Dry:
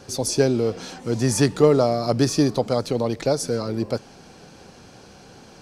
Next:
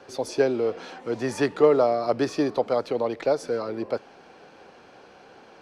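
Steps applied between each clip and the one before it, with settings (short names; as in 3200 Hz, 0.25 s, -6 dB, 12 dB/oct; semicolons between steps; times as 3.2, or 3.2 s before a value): three-band isolator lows -16 dB, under 310 Hz, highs -17 dB, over 3300 Hz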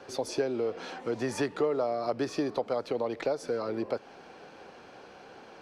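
compressor 3:1, threshold -28 dBFS, peak gain reduction 12 dB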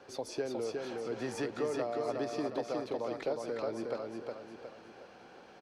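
feedback echo 0.362 s, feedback 43%, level -3.5 dB; gain -6.5 dB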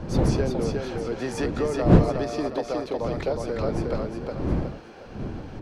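wind noise 250 Hz -34 dBFS; gain +7.5 dB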